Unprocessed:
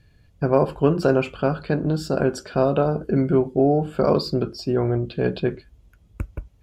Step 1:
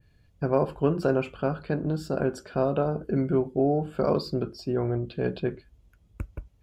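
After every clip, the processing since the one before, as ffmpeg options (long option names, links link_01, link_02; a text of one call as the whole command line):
ffmpeg -i in.wav -af "adynamicequalizer=threshold=0.00501:dfrequency=5100:dqfactor=0.75:tfrequency=5100:tqfactor=0.75:attack=5:release=100:ratio=0.375:range=2.5:mode=cutabove:tftype=bell,volume=-5.5dB" out.wav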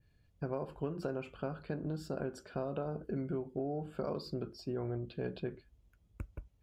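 ffmpeg -i in.wav -af "acompressor=threshold=-25dB:ratio=6,volume=-8dB" out.wav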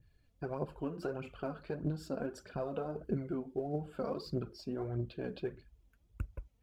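ffmpeg -i in.wav -af "aphaser=in_gain=1:out_gain=1:delay=4.6:decay=0.55:speed=1.6:type=triangular,volume=-1.5dB" out.wav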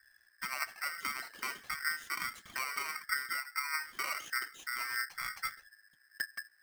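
ffmpeg -i in.wav -af "aeval=exprs='val(0)+0.000316*(sin(2*PI*60*n/s)+sin(2*PI*2*60*n/s)/2+sin(2*PI*3*60*n/s)/3+sin(2*PI*4*60*n/s)/4+sin(2*PI*5*60*n/s)/5)':channel_layout=same,aeval=exprs='val(0)*sgn(sin(2*PI*1700*n/s))':channel_layout=same" out.wav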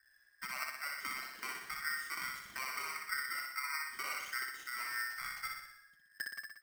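ffmpeg -i in.wav -af "aecho=1:1:61|122|183|244|305|366|427|488:0.668|0.394|0.233|0.137|0.081|0.0478|0.0282|0.0166,volume=-5dB" out.wav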